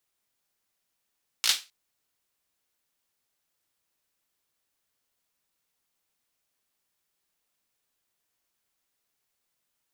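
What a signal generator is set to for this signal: hand clap length 0.26 s, apart 17 ms, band 3800 Hz, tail 0.26 s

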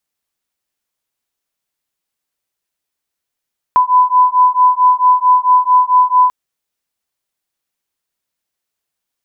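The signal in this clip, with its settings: beating tones 999 Hz, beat 4.5 Hz, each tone -10.5 dBFS 2.54 s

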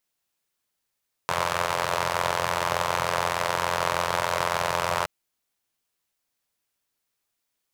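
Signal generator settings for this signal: four-cylinder engine model, steady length 3.77 s, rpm 2600, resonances 130/610/950 Hz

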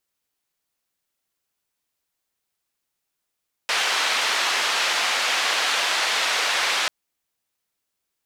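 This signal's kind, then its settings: noise band 720–3700 Hz, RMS -22.5 dBFS 3.19 s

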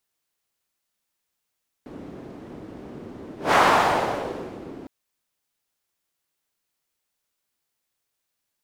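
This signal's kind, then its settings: whoosh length 3.01 s, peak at 1.68, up 0.17 s, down 1.30 s, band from 300 Hz, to 1000 Hz, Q 1.6, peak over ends 23 dB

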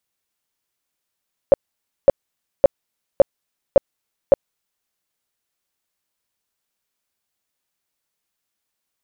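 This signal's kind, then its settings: tone bursts 555 Hz, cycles 10, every 0.56 s, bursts 6, -4.5 dBFS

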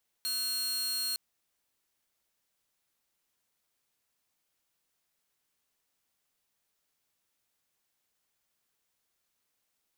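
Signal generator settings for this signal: tone saw 4260 Hz -28 dBFS 0.91 s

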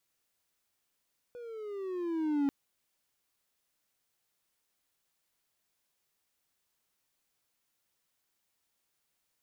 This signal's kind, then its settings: gliding synth tone triangle, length 1.14 s, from 491 Hz, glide -10 st, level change +17.5 dB, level -23 dB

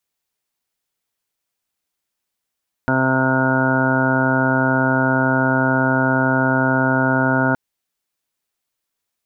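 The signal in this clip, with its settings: steady additive tone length 4.67 s, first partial 131 Hz, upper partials 3/-7/-5/-1.5/-9.5/-2/-13/-16/-9/2/-12.5 dB, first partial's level -22 dB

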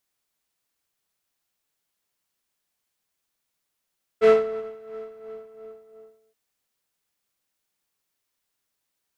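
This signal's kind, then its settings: synth patch with tremolo A4, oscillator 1 triangle, oscillator 2 saw, interval +7 st, oscillator 2 level -10 dB, sub -23 dB, noise -9 dB, filter lowpass, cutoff 820 Hz, Q 0.92, filter envelope 1.5 oct, filter decay 0.21 s, filter sustain 50%, attack 33 ms, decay 0.38 s, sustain -22 dB, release 1.39 s, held 0.74 s, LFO 2.9 Hz, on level 10 dB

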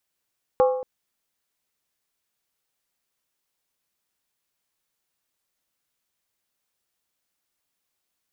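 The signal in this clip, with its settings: skin hit length 0.23 s, lowest mode 511 Hz, decay 0.77 s, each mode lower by 6.5 dB, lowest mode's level -13 dB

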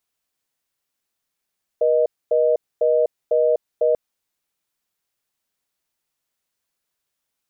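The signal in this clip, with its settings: call progress tone reorder tone, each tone -17 dBFS 2.14 s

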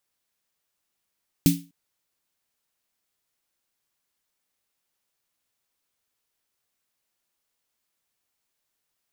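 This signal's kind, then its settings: snare drum length 0.25 s, tones 170 Hz, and 280 Hz, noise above 2400 Hz, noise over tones -8.5 dB, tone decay 0.30 s, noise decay 0.28 s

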